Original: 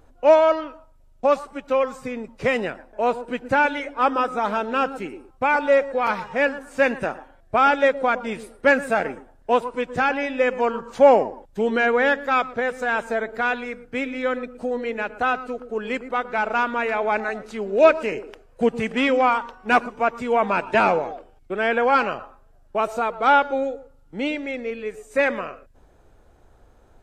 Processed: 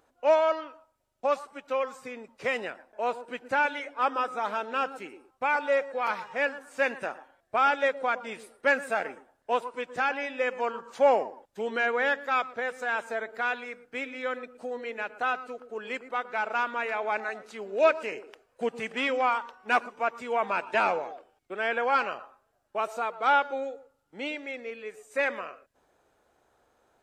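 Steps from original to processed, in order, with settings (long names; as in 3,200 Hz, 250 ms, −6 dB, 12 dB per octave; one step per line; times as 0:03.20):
high-pass filter 610 Hz 6 dB per octave
level −5 dB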